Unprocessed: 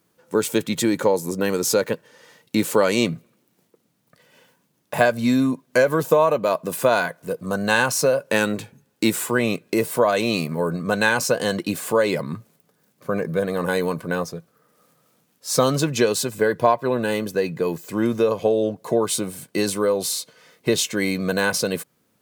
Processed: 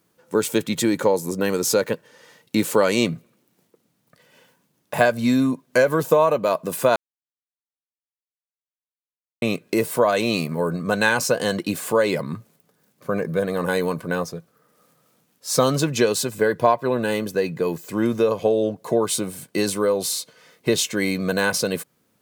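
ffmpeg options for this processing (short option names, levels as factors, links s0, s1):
-filter_complex "[0:a]asplit=3[s0][s1][s2];[s0]atrim=end=6.96,asetpts=PTS-STARTPTS,afade=t=out:st=6.956:d=0.004:c=hsin[s3];[s1]atrim=start=6.96:end=9.42,asetpts=PTS-STARTPTS,volume=0[s4];[s2]atrim=start=9.42,asetpts=PTS-STARTPTS,afade=t=in:d=0.004:c=hsin[s5];[s3][s4][s5]concat=n=3:v=0:a=1"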